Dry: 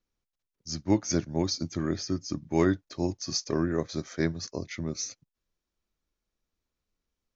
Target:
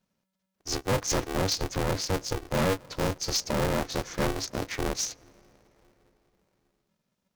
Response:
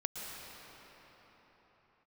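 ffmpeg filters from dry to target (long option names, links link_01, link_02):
-filter_complex "[0:a]asoftclip=type=hard:threshold=-26dB,asplit=2[link_01][link_02];[1:a]atrim=start_sample=2205,highshelf=frequency=4400:gain=-11[link_03];[link_02][link_03]afir=irnorm=-1:irlink=0,volume=-22.5dB[link_04];[link_01][link_04]amix=inputs=2:normalize=0,aeval=exprs='val(0)*sgn(sin(2*PI*190*n/s))':channel_layout=same,volume=4dB"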